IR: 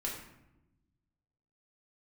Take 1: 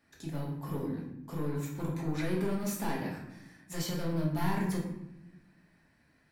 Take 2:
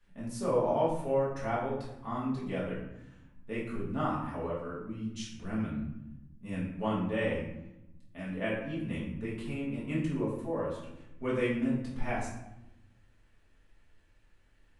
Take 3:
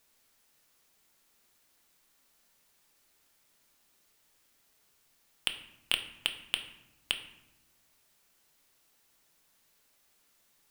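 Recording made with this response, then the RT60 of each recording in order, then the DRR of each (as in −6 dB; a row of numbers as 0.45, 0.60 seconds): 1; 0.95, 0.95, 1.0 seconds; −4.0, −8.5, 6.0 decibels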